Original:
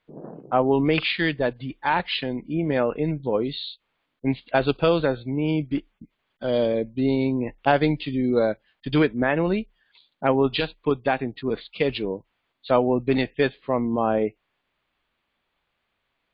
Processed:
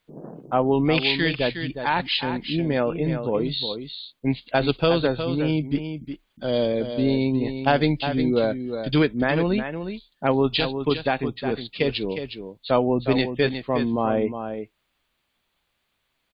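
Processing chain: tone controls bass +3 dB, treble +13 dB; on a send: delay 361 ms -8.5 dB; on the sum: trim -1 dB

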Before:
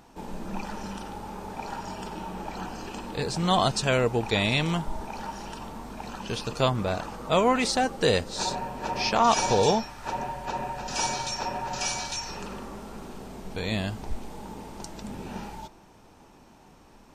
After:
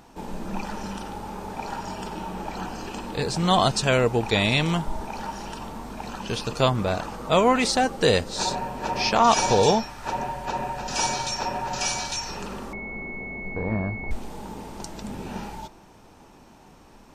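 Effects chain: 12.73–14.11 s: class-D stage that switches slowly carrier 2.2 kHz; trim +3 dB

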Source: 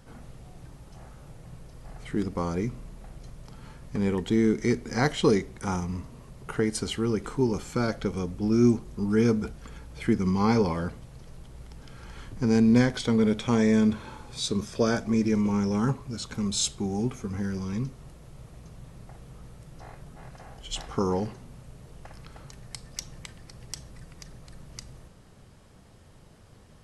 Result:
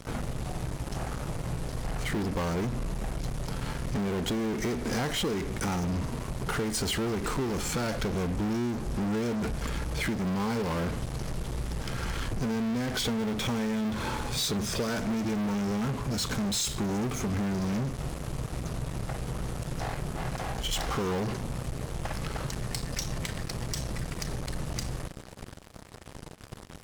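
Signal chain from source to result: in parallel at -6 dB: fuzz box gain 43 dB, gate -50 dBFS; on the sum: compression, threshold -22 dBFS, peak gain reduction 10 dB; trim -6 dB

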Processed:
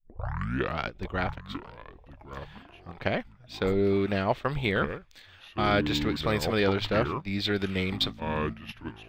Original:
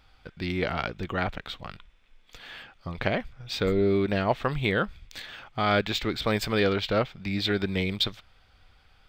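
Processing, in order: tape start-up on the opening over 0.79 s; ever faster or slower copies 739 ms, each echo -5 st, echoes 2, each echo -6 dB; gate -30 dBFS, range -10 dB; trim -1.5 dB

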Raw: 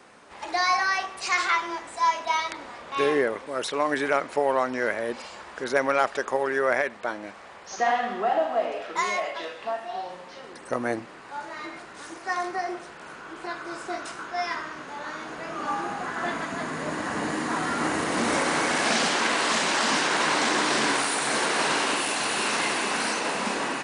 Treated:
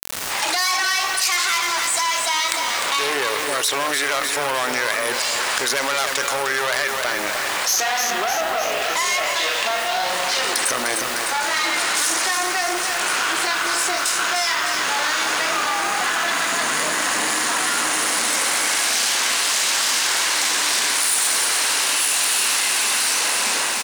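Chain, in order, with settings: fade out at the end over 7.38 s; recorder AGC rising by 25 dB/s; valve stage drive 23 dB, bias 0.7; tilt EQ +4.5 dB/octave; de-hum 113.9 Hz, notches 4; wow and flutter 26 cents; feedback delay 303 ms, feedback 54%, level -9.5 dB; bit crusher 7-bit; level flattener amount 70%

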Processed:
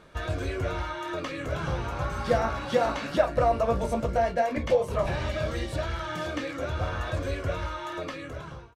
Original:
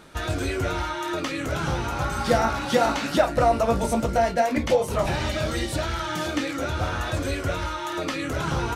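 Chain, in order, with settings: fade out at the end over 0.88 s; treble shelf 5 kHz -11.5 dB; comb 1.8 ms, depth 33%; trim -4 dB

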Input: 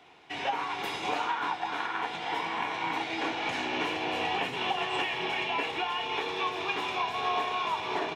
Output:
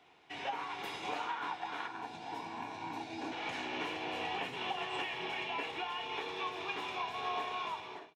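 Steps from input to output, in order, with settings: fade out at the end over 0.51 s; 1.88–3.32 s: graphic EQ with 31 bands 100 Hz +9 dB, 250 Hz +7 dB, 500 Hz -6 dB, 1.25 kHz -11 dB, 2 kHz -12 dB, 3.15 kHz -10 dB; trim -7.5 dB

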